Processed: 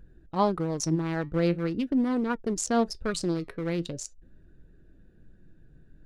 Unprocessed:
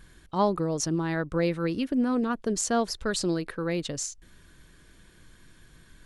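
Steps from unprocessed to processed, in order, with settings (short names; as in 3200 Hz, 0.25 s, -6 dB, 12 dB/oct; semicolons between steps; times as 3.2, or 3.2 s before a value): Wiener smoothing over 41 samples; flange 0.43 Hz, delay 2 ms, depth 5.4 ms, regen +77%; gain +5 dB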